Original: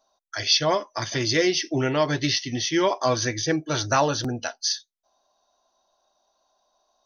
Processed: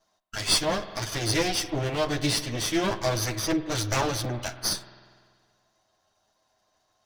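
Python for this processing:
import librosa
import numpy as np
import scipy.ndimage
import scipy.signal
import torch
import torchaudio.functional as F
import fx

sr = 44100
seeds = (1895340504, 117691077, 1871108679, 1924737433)

y = fx.lower_of_two(x, sr, delay_ms=9.4)
y = fx.rev_spring(y, sr, rt60_s=1.8, pass_ms=(48,), chirp_ms=30, drr_db=13.0)
y = fx.dynamic_eq(y, sr, hz=1200.0, q=0.75, threshold_db=-35.0, ratio=4.0, max_db=-5)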